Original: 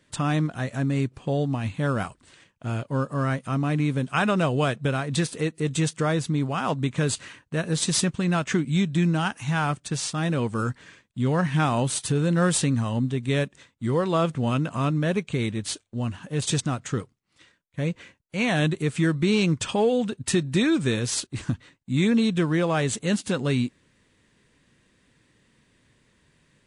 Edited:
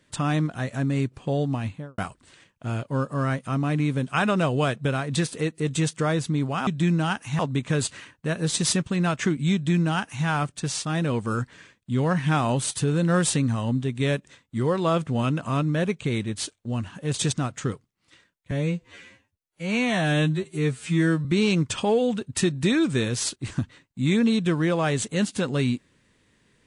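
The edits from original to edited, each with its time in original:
1.57–1.98 s: studio fade out
8.82–9.54 s: copy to 6.67 s
17.79–19.16 s: stretch 2×

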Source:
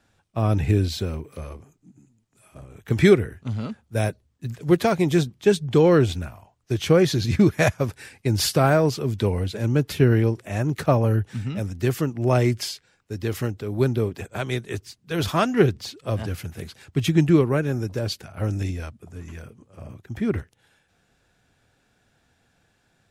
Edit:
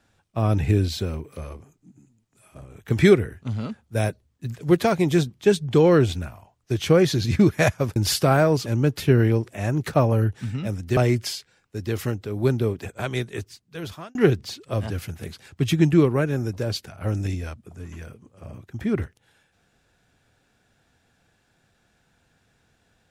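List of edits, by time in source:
7.96–8.29 s: delete
8.99–9.58 s: delete
11.89–12.33 s: delete
14.61–15.51 s: fade out

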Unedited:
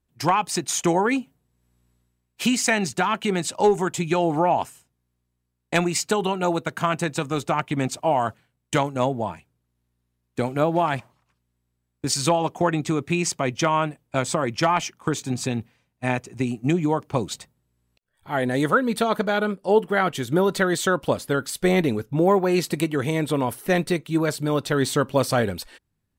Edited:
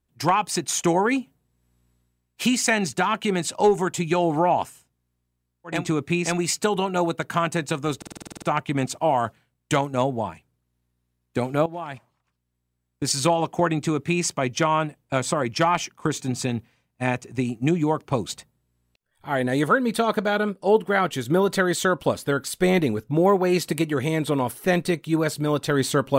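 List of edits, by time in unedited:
7.44 s: stutter 0.05 s, 10 plays
10.68–12.05 s: fade in, from -15 dB
12.76–13.29 s: copy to 5.76 s, crossfade 0.24 s

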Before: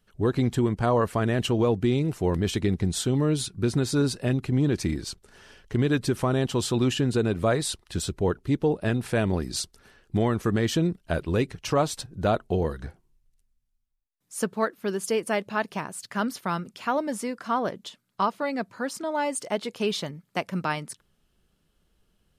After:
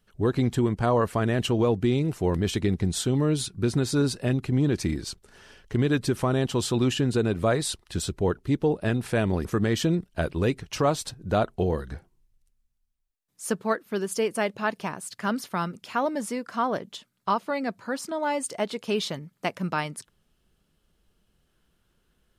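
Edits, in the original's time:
9.45–10.37 s: delete

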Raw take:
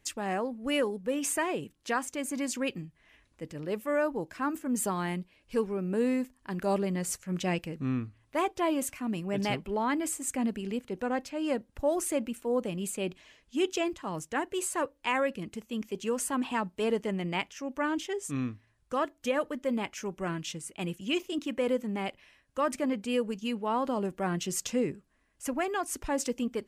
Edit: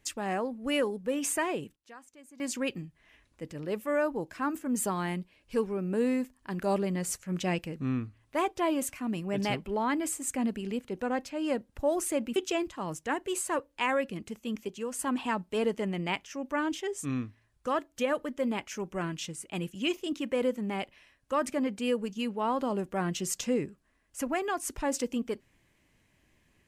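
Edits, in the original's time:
1.45–2.71 s: dip -19.5 dB, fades 0.31 s logarithmic
12.36–13.62 s: delete
15.94–16.25 s: gain -5 dB

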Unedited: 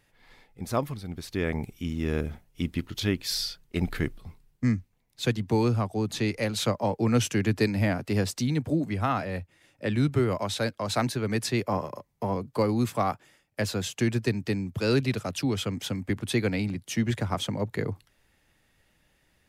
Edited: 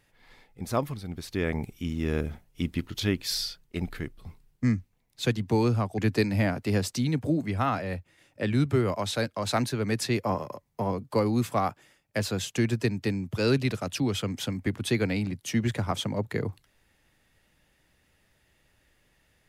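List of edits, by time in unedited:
3.30–4.18 s: fade out, to -9 dB
5.98–7.41 s: delete

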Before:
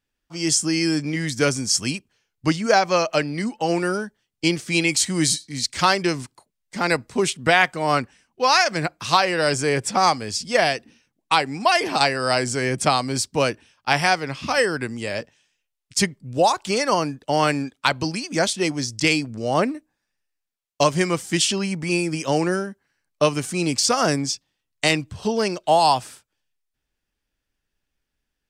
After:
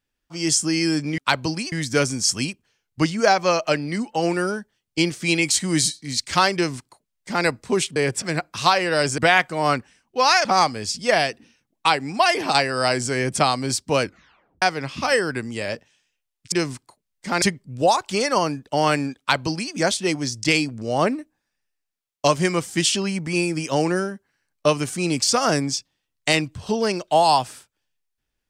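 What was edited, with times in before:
6.01–6.91 s: copy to 15.98 s
7.42–8.69 s: swap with 9.65–9.91 s
13.48 s: tape stop 0.60 s
17.75–18.29 s: copy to 1.18 s

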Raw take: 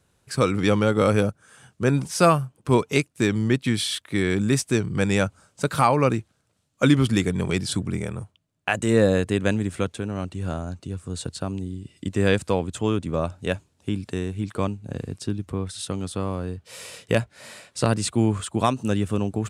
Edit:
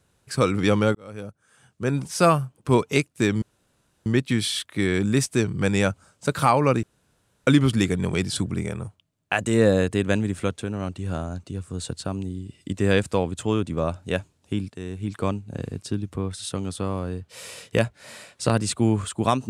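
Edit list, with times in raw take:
0.95–2.38 s: fade in
3.42 s: insert room tone 0.64 s
6.19–6.83 s: room tone
14.06–14.48 s: fade in linear, from -12.5 dB

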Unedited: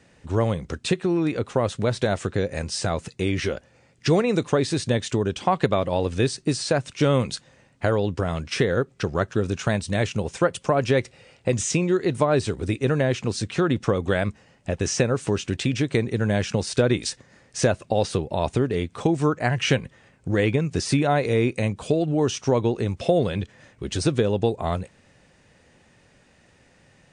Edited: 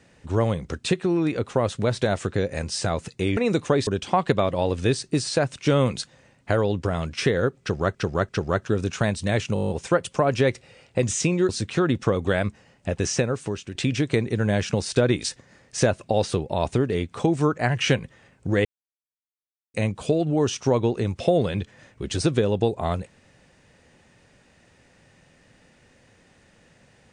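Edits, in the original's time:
3.37–4.20 s: delete
4.70–5.21 s: delete
8.95–9.29 s: loop, 3 plays
10.20 s: stutter 0.02 s, 9 plays
11.99–13.30 s: delete
14.85–15.56 s: fade out, to -10.5 dB
20.46–21.55 s: mute

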